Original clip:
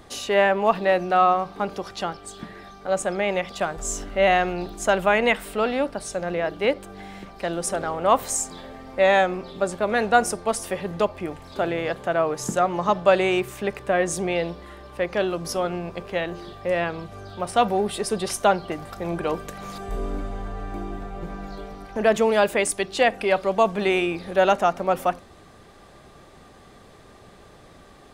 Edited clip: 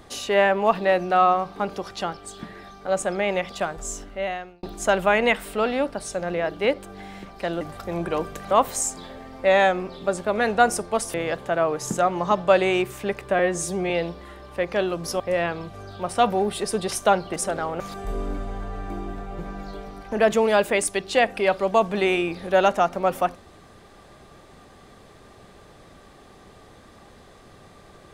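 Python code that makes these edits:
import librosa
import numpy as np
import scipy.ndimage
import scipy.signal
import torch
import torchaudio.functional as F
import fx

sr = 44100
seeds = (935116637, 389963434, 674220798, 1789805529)

y = fx.edit(x, sr, fx.fade_out_span(start_s=3.52, length_s=1.11),
    fx.swap(start_s=7.61, length_s=0.44, other_s=18.74, other_length_s=0.9),
    fx.cut(start_s=10.68, length_s=1.04),
    fx.stretch_span(start_s=13.97, length_s=0.34, factor=1.5),
    fx.cut(start_s=15.61, length_s=0.97), tone=tone)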